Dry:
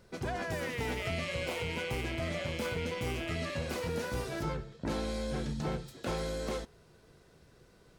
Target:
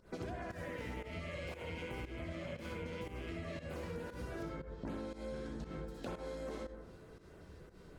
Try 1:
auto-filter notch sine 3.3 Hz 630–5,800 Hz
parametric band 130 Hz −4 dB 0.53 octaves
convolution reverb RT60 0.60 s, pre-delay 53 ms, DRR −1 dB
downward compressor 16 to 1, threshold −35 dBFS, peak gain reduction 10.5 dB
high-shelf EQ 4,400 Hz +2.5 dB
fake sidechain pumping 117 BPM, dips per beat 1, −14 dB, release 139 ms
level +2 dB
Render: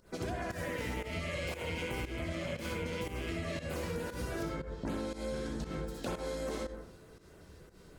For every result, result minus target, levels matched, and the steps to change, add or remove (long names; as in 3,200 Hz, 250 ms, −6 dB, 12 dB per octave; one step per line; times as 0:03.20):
8,000 Hz band +6.5 dB; downward compressor: peak gain reduction −5.5 dB
change: high-shelf EQ 4,400 Hz −7 dB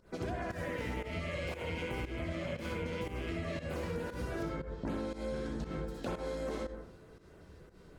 downward compressor: peak gain reduction −5.5 dB
change: downward compressor 16 to 1, threshold −41 dBFS, peak gain reduction 16 dB